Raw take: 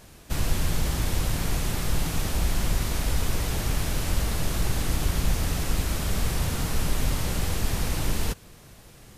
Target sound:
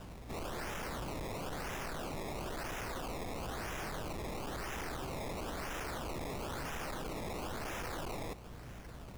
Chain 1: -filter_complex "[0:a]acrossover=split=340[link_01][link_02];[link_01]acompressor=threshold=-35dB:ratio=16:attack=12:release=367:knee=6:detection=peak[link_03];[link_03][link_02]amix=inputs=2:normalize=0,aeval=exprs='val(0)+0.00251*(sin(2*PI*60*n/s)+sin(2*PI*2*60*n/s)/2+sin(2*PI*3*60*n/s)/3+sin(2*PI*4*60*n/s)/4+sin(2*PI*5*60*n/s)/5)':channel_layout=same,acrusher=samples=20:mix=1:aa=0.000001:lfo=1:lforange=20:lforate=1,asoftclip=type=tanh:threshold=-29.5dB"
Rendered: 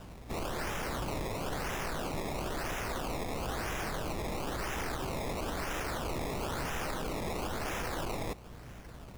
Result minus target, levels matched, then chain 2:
soft clipping: distortion −7 dB
-filter_complex "[0:a]acrossover=split=340[link_01][link_02];[link_01]acompressor=threshold=-35dB:ratio=16:attack=12:release=367:knee=6:detection=peak[link_03];[link_03][link_02]amix=inputs=2:normalize=0,aeval=exprs='val(0)+0.00251*(sin(2*PI*60*n/s)+sin(2*PI*2*60*n/s)/2+sin(2*PI*3*60*n/s)/3+sin(2*PI*4*60*n/s)/4+sin(2*PI*5*60*n/s)/5)':channel_layout=same,acrusher=samples=20:mix=1:aa=0.000001:lfo=1:lforange=20:lforate=1,asoftclip=type=tanh:threshold=-38dB"

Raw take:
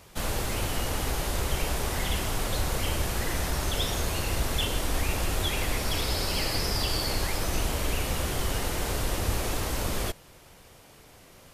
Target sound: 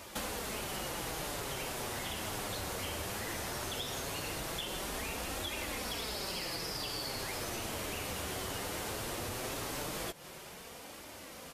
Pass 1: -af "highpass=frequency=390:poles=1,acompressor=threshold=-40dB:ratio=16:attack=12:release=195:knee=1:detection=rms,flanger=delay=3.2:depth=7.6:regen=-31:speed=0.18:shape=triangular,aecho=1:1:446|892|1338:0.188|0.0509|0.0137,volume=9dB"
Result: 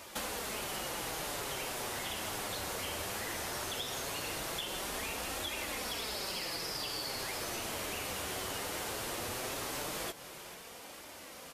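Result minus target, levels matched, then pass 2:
echo-to-direct +11 dB; 250 Hz band −3.0 dB
-af "highpass=frequency=180:poles=1,acompressor=threshold=-40dB:ratio=16:attack=12:release=195:knee=1:detection=rms,flanger=delay=3.2:depth=7.6:regen=-31:speed=0.18:shape=triangular,aecho=1:1:446|892:0.0531|0.0143,volume=9dB"

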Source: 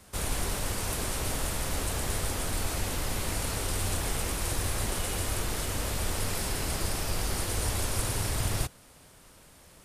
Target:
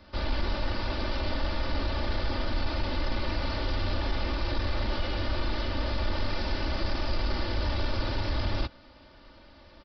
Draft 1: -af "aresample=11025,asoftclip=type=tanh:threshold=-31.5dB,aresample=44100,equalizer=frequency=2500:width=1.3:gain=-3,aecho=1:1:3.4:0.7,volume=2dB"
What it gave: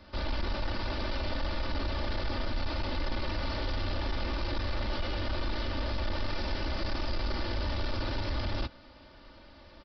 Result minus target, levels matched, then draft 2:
soft clipping: distortion +7 dB
-af "aresample=11025,asoftclip=type=tanh:threshold=-24.5dB,aresample=44100,equalizer=frequency=2500:width=1.3:gain=-3,aecho=1:1:3.4:0.7,volume=2dB"

